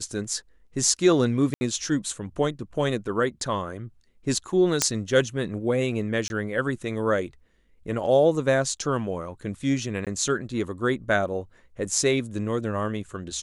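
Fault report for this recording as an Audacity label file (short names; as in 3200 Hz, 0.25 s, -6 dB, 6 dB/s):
1.540000	1.610000	gap 70 ms
4.820000	4.820000	pop -4 dBFS
6.280000	6.300000	gap 21 ms
10.050000	10.070000	gap 17 ms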